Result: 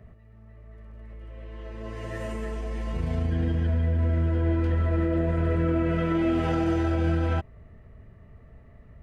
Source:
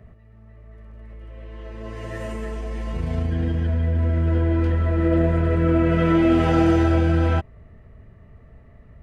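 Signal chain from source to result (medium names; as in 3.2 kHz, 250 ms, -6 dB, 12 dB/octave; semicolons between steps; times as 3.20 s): peak limiter -14.5 dBFS, peak gain reduction 7 dB; trim -2.5 dB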